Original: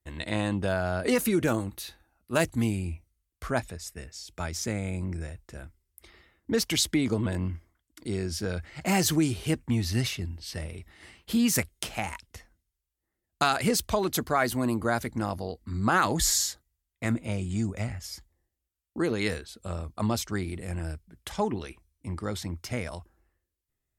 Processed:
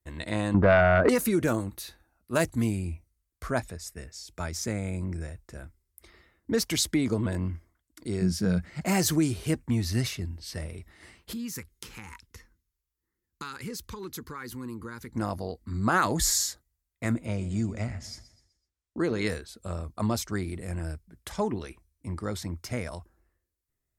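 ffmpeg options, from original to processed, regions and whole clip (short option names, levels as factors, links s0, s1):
-filter_complex "[0:a]asettb=1/sr,asplit=3[s0][s1][s2];[s0]atrim=end=0.544[s3];[s1]atrim=start=0.54:end=1.09,asetpts=PTS-STARTPTS,afade=t=in:d=0.004:c=qsin,afade=t=out:st=0.546:d=0.004:c=qsin,lowpass=f=1300:t=q:w=1.9,aeval=exprs='0.251*sin(PI/2*2*val(0)/0.251)':c=same[s4];[s2]atrim=start=1.086[s5];[s3][s4]acrossfade=d=0.004:c1=hsin:c2=qsin[s6];[s6][s5]acrossfade=d=0.004:c1=qsin:c2=hsin,asettb=1/sr,asplit=3[s7][s8][s9];[s7]atrim=end=8.214[s10];[s8]atrim=start=8.21:end=8.81,asetpts=PTS-STARTPTS,afade=t=in:d=0.004:c=qsin,afade=t=out:st=0.596:d=0.004:c=qsin,highpass=41,equalizer=f=180:t=o:w=0.53:g=13.5[s11];[s9]atrim=start=8.806[s12];[s10][s11]acrossfade=d=0.004:c1=hsin:c2=qsin[s13];[s13][s12]acrossfade=d=0.004:c1=qsin:c2=hsin,asettb=1/sr,asplit=3[s14][s15][s16];[s14]atrim=end=11.334[s17];[s15]atrim=start=11.33:end=15.14,asetpts=PTS-STARTPTS,afade=t=in:d=0.004:c=qsin,afade=t=out:st=3.806:d=0.004:c=qsin,equalizer=f=8700:t=o:w=0.22:g=-6.5,acompressor=threshold=0.00794:ratio=2:attack=3.2:release=140:knee=1:detection=peak,asuperstop=centerf=660:order=4:qfactor=1.8[s18];[s16]atrim=start=15.136[s19];[s17][s18]acrossfade=d=0.004:c1=hsin:c2=qsin[s20];[s20][s19]acrossfade=d=0.004:c1=qsin:c2=hsin,asettb=1/sr,asplit=3[s21][s22][s23];[s21]atrim=end=17.264[s24];[s22]atrim=start=17.26:end=19.27,asetpts=PTS-STARTPTS,afade=t=in:d=0.004:c=qsin,afade=t=out:st=2.006:d=0.004:c=qsin,lowpass=7200,aecho=1:1:126|252|378|504:0.158|0.065|0.0266|0.0109,atrim=end_sample=88641[s25];[s23]atrim=start=19.266[s26];[s24][s25]acrossfade=d=0.004:c1=hsin:c2=qsin[s27];[s27][s26]acrossfade=d=0.004:c1=qsin:c2=hsin,equalizer=f=3000:w=2:g=-5,bandreject=f=810:w=17"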